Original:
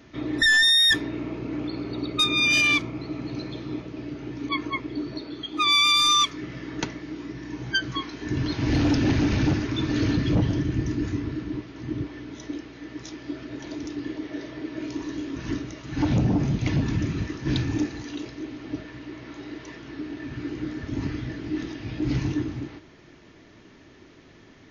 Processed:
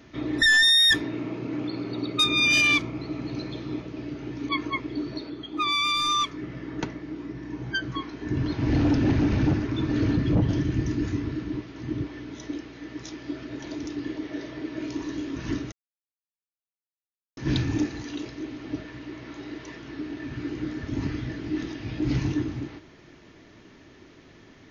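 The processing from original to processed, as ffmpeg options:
ffmpeg -i in.wav -filter_complex "[0:a]asettb=1/sr,asplit=3[link_01][link_02][link_03];[link_01]atrim=end=1.024[link_04];[link_02]atrim=start=1.02:end=2.2,asetpts=PTS-STARTPTS,afade=type=in:duration=0.004:curve=qsin,afade=type=out:start_time=1.176:duration=0.004:curve=qsin,highpass=frequency=94:width=0.5412,highpass=frequency=94:width=1.3066[link_05];[link_03]atrim=start=2.196[link_06];[link_04][link_05]acrossfade=duration=0.004:curve1=hsin:curve2=qsin[link_07];[link_07][link_06]acrossfade=duration=0.004:curve1=qsin:curve2=hsin,asettb=1/sr,asplit=3[link_08][link_09][link_10];[link_08]atrim=end=5.304[link_11];[link_09]atrim=start=5.3:end=10.49,asetpts=PTS-STARTPTS,afade=type=in:duration=0.004:curve=qsin,afade=type=out:start_time=5.186:duration=0.004:curve=qsin,highshelf=frequency=2400:gain=-10[link_12];[link_10]atrim=start=10.486[link_13];[link_11][link_12]acrossfade=duration=0.004:curve1=hsin:curve2=qsin[link_14];[link_14][link_13]acrossfade=duration=0.004:curve1=qsin:curve2=hsin,asplit=3[link_15][link_16][link_17];[link_15]atrim=end=15.72,asetpts=PTS-STARTPTS,afade=type=out:start_time=15.716:duration=0.004:curve=hsin[link_18];[link_16]atrim=start=15.72:end=17.37,asetpts=PTS-STARTPTS,volume=0[link_19];[link_17]atrim=start=17.37,asetpts=PTS-STARTPTS,afade=type=in:duration=0.004:curve=hsin[link_20];[link_18][link_19][link_20]concat=n=3:v=0:a=1" out.wav

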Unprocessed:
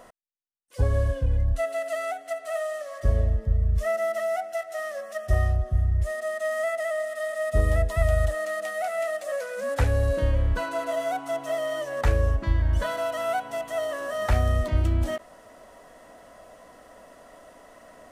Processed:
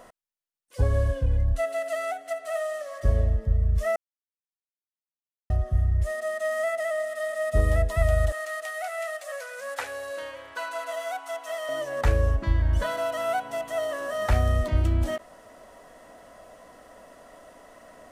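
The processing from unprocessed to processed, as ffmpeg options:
ffmpeg -i in.wav -filter_complex "[0:a]asettb=1/sr,asplit=3[link_01][link_02][link_03];[link_01]atrim=end=8.324[link_04];[link_02]atrim=start=8.32:end=11.69,asetpts=PTS-STARTPTS,afade=type=in:duration=0.004:curve=qsin,afade=type=out:start_time=3.366:duration=0.004:curve=qsin,highpass=820[link_05];[link_03]atrim=start=11.686[link_06];[link_04][link_05]acrossfade=duration=0.004:curve1=hsin:curve2=qsin[link_07];[link_07][link_06]acrossfade=duration=0.004:curve1=qsin:curve2=hsin,asplit=3[link_08][link_09][link_10];[link_08]atrim=end=3.96,asetpts=PTS-STARTPTS,afade=type=out:start_time=3.956:duration=0.004:curve=hsin[link_11];[link_09]atrim=start=3.96:end=5.5,asetpts=PTS-STARTPTS,volume=0[link_12];[link_10]atrim=start=5.5,asetpts=PTS-STARTPTS,afade=type=in:duration=0.004:curve=hsin[link_13];[link_11][link_12][link_13]concat=n=3:v=0:a=1" out.wav

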